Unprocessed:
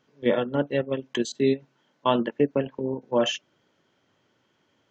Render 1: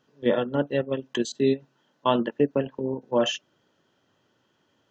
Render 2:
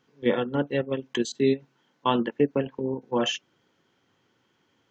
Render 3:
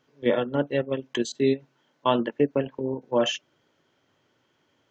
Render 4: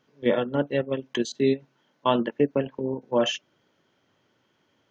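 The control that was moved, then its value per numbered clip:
band-stop, frequency: 2.2 kHz, 610 Hz, 200 Hz, 7.6 kHz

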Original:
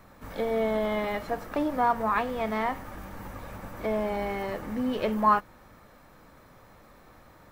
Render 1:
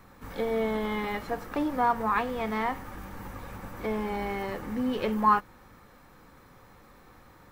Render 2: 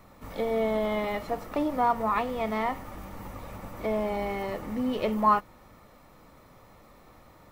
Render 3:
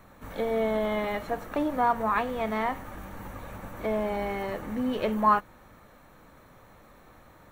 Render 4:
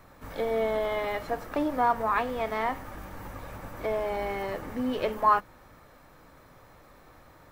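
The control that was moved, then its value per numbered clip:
band-stop, frequency: 630 Hz, 1.6 kHz, 5 kHz, 210 Hz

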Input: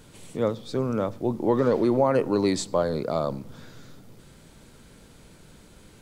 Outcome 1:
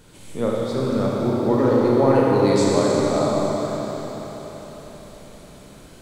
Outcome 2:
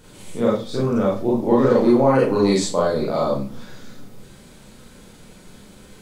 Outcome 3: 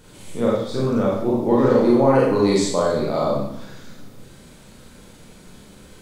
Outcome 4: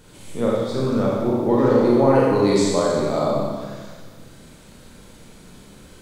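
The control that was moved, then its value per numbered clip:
Schroeder reverb, RT60: 4.6 s, 0.31 s, 0.7 s, 1.5 s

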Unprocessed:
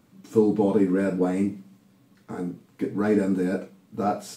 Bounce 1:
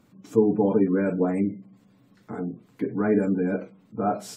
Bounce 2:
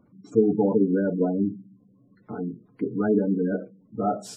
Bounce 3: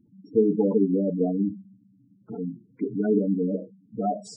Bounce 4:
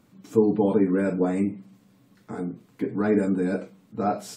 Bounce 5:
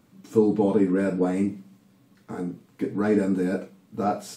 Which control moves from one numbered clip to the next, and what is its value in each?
spectral gate, under each frame's peak: -35 dB, -20 dB, -10 dB, -45 dB, -60 dB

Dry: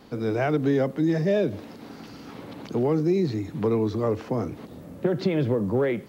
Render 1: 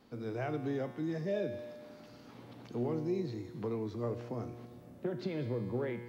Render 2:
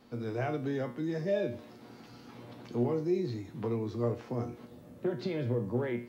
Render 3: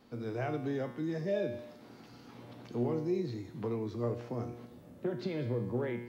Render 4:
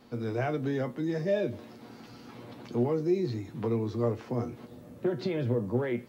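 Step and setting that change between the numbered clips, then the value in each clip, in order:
feedback comb, decay: 1.9 s, 0.39 s, 0.88 s, 0.16 s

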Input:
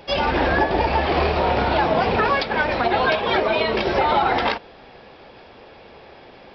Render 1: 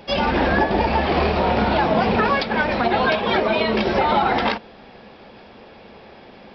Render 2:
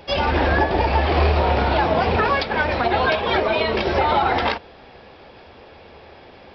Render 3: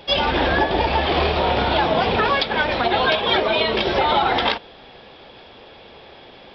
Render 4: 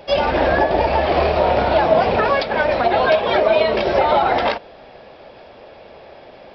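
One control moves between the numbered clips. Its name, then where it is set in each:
peaking EQ, frequency: 210 Hz, 78 Hz, 3.4 kHz, 610 Hz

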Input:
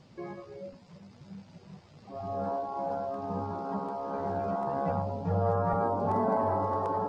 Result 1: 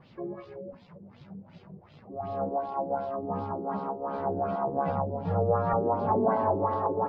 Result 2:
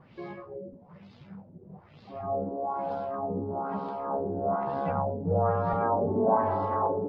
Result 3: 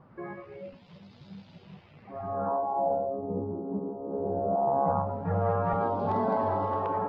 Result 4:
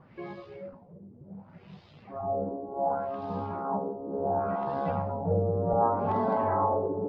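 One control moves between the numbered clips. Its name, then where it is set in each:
LFO low-pass, rate: 2.7 Hz, 1.1 Hz, 0.2 Hz, 0.68 Hz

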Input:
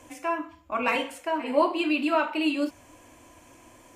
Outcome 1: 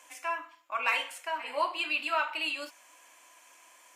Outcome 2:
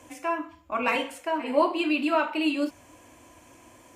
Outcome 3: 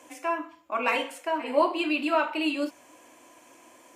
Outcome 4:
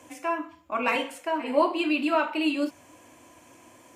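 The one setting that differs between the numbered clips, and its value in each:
high-pass, cutoff frequency: 1.1 kHz, 42 Hz, 290 Hz, 110 Hz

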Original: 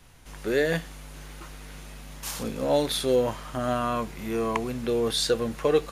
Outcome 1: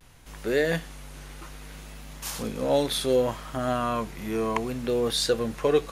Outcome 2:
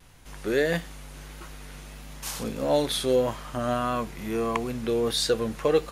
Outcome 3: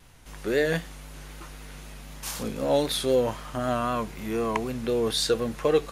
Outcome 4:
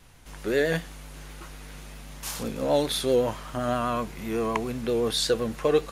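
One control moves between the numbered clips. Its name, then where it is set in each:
vibrato, rate: 0.65 Hz, 1.6 Hz, 3.9 Hz, 7.8 Hz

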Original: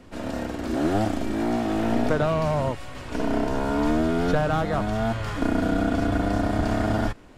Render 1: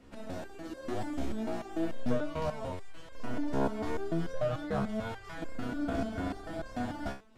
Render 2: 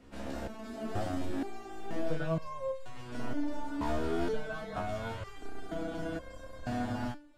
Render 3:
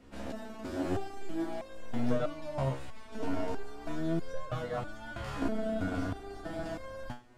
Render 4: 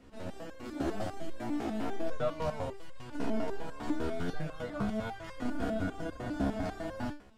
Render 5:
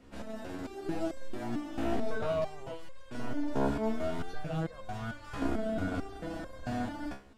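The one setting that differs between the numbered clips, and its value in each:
resonator arpeggio, rate: 6.8 Hz, 2.1 Hz, 3.1 Hz, 10 Hz, 4.5 Hz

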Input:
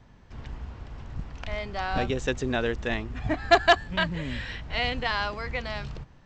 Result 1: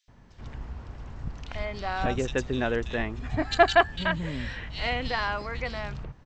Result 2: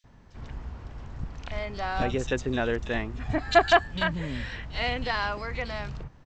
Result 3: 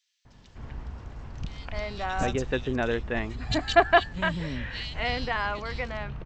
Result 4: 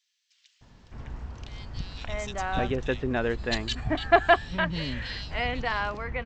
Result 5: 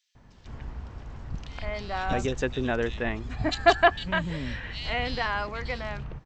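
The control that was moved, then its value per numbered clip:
bands offset in time, time: 80 ms, 40 ms, 250 ms, 610 ms, 150 ms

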